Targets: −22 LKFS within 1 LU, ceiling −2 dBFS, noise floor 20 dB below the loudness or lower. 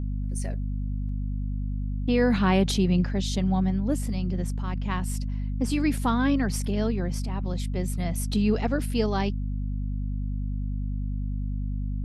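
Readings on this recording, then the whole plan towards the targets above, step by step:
mains hum 50 Hz; hum harmonics up to 250 Hz; level of the hum −26 dBFS; integrated loudness −27.5 LKFS; sample peak −10.5 dBFS; target loudness −22.0 LKFS
→ mains-hum notches 50/100/150/200/250 Hz
level +5.5 dB

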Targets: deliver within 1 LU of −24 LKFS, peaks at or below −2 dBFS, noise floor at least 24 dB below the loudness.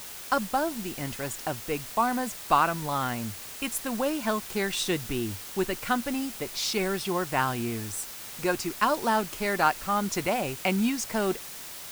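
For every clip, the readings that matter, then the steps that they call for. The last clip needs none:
background noise floor −41 dBFS; target noise floor −53 dBFS; integrated loudness −28.5 LKFS; sample peak −7.5 dBFS; target loudness −24.0 LKFS
→ noise reduction from a noise print 12 dB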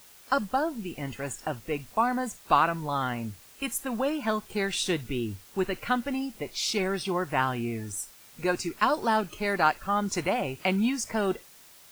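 background noise floor −53 dBFS; integrated loudness −29.0 LKFS; sample peak −7.5 dBFS; target loudness −24.0 LKFS
→ level +5 dB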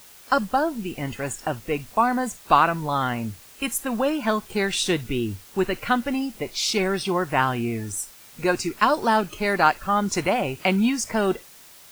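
integrated loudness −24.0 LKFS; sample peak −2.5 dBFS; background noise floor −48 dBFS

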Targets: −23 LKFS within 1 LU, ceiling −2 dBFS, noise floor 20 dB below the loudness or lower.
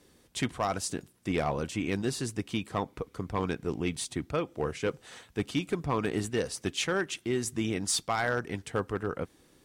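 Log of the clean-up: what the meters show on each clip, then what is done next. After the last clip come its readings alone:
share of clipped samples 0.3%; peaks flattened at −20.5 dBFS; integrated loudness −32.5 LKFS; sample peak −20.5 dBFS; target loudness −23.0 LKFS
→ clipped peaks rebuilt −20.5 dBFS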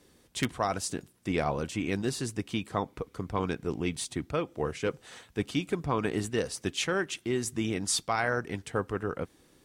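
share of clipped samples 0.0%; integrated loudness −32.0 LKFS; sample peak −11.5 dBFS; target loudness −23.0 LKFS
→ level +9 dB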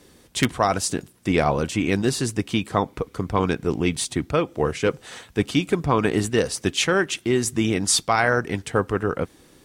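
integrated loudness −23.0 LKFS; sample peak −2.5 dBFS; background noise floor −54 dBFS

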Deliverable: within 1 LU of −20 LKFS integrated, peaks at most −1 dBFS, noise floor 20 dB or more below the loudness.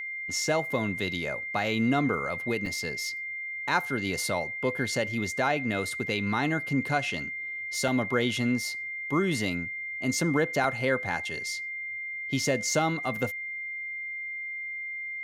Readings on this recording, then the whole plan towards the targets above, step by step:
number of dropouts 3; longest dropout 2.7 ms; interfering tone 2,100 Hz; level of the tone −33 dBFS; integrated loudness −29.0 LKFS; sample peak −12.0 dBFS; target loudness −20.0 LKFS
→ repair the gap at 0:02.66/0:07.88/0:10.64, 2.7 ms
notch filter 2,100 Hz, Q 30
level +9 dB

